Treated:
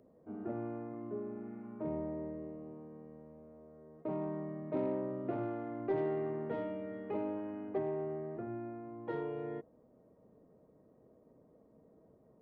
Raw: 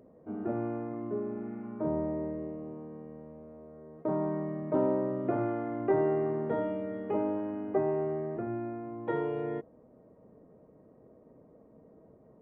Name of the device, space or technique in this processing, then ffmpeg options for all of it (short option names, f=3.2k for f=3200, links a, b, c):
one-band saturation: -filter_complex "[0:a]asettb=1/sr,asplit=3[a][b][c];[a]atrim=end=5.964[d];[b]atrim=start=5.96:end=7.69,asetpts=PTS-STARTPTS,afade=t=in:d=0.004:c=qsin,afade=t=out:st=1.726:d=0.004:c=qsin,equalizer=f=2.4k:w=1.1:g=4.5[e];[c]atrim=start=7.686[f];[d][e]acrossfade=d=0.004:c1=hsin:c2=qsin[g];[g][f]acrossfade=d=0.004:c1=qsin:c2=hsin,acrossover=split=570|2800[h][i][j];[i]asoftclip=type=tanh:threshold=-32dB[k];[h][k][j]amix=inputs=3:normalize=0,volume=-6.5dB"